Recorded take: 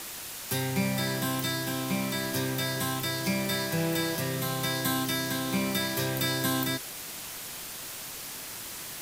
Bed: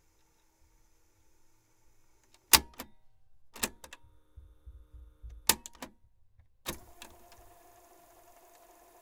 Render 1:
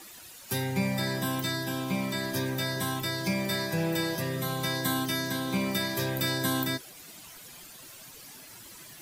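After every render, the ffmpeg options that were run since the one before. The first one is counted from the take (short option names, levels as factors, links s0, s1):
-af "afftdn=nr=12:nf=-40"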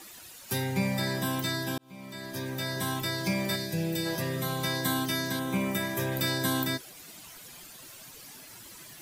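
-filter_complex "[0:a]asplit=3[s0][s1][s2];[s0]afade=t=out:st=3.55:d=0.02[s3];[s1]equalizer=f=1100:t=o:w=1.4:g=-13.5,afade=t=in:st=3.55:d=0.02,afade=t=out:st=4.05:d=0.02[s4];[s2]afade=t=in:st=4.05:d=0.02[s5];[s3][s4][s5]amix=inputs=3:normalize=0,asettb=1/sr,asplit=3[s6][s7][s8];[s6]atrim=end=5.394[s9];[s7]atrim=start=5.39:end=6.12,asetpts=PTS-STARTPTS,afade=t=in:d=0.004:c=qsin,afade=t=out:st=0.726:d=0.004:c=qsin,equalizer=f=4500:w=3:g=-13.5[s10];[s8]atrim=start=6.116[s11];[s9][s10]acrossfade=d=0.004:c1=hsin:c2=qsin[s12];[s12][s11]acrossfade=d=0.004:c1=qsin:c2=hsin,asplit=2[s13][s14];[s13]atrim=end=1.78,asetpts=PTS-STARTPTS,afade=t=out:st=1.776:d=0.004:c=hsin[s15];[s14]atrim=start=1.78,asetpts=PTS-STARTPTS,afade=t=in:d=1.13[s16];[s15][s16]concat=n=2:v=0:a=1"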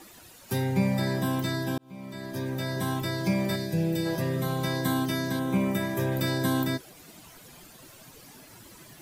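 -af "tiltshelf=f=1200:g=4.5"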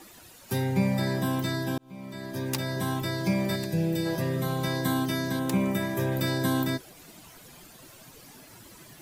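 -filter_complex "[1:a]volume=0.2[s0];[0:a][s0]amix=inputs=2:normalize=0"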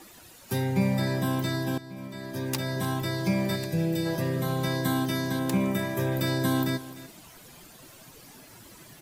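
-af "aecho=1:1:298:0.15"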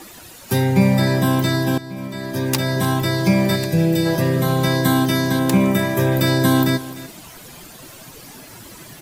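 -af "volume=3.16"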